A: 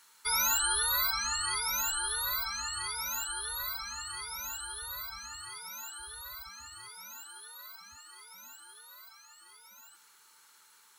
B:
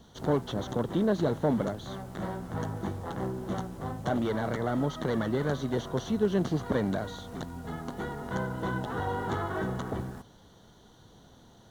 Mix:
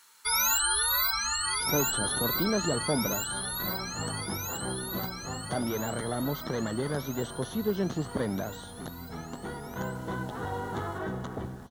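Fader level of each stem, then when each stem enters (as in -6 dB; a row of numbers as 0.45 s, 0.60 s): +2.5 dB, -2.5 dB; 0.00 s, 1.45 s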